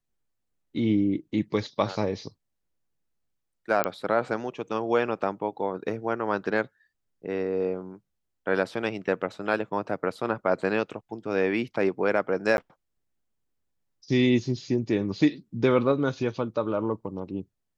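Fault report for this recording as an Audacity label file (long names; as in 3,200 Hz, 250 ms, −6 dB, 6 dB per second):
3.840000	3.840000	click −8 dBFS
12.570000	12.580000	drop-out 11 ms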